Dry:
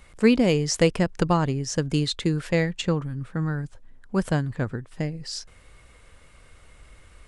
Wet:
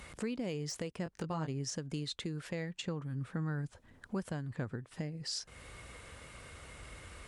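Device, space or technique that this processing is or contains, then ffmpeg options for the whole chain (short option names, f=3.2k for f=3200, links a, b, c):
podcast mastering chain: -filter_complex "[0:a]asettb=1/sr,asplit=3[a][b][c];[a]atrim=end=1.044[d];[b]atrim=start=1.04:end=1.48,asetpts=PTS-STARTPTS,afade=t=in:d=0.004:c=qsin,afade=t=out:st=0.436:d=0.004:c=qsin,asplit=2[e][f];[f]adelay=19,volume=-6.5dB[g];[e][g]amix=inputs=2:normalize=0,atrim=end_sample=19404[h];[c]atrim=start=1.476[i];[d][h]acrossfade=d=0.004:c1=hsin:c2=qsin[j];[j][i]acrossfade=d=0.004:c1=qsin:c2=hsin,highpass=65,deesser=0.55,acompressor=threshold=-43dB:ratio=2.5,alimiter=level_in=8dB:limit=-24dB:level=0:latency=1:release=389,volume=-8dB,volume=4.5dB" -ar 48000 -c:a libmp3lame -b:a 96k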